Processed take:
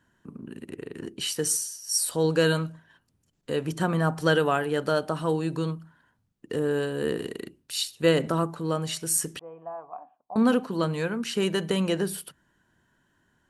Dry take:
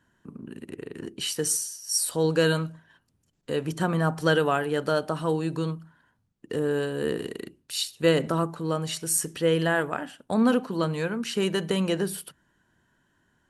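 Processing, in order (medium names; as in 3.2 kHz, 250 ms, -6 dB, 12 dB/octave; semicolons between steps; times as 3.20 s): 9.39–10.36 s: cascade formant filter a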